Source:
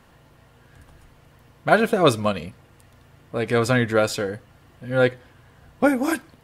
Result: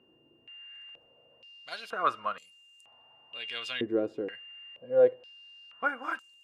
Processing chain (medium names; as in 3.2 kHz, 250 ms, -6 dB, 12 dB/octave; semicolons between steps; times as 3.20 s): whistle 2.8 kHz -36 dBFS; step-sequenced band-pass 2.1 Hz 350–7400 Hz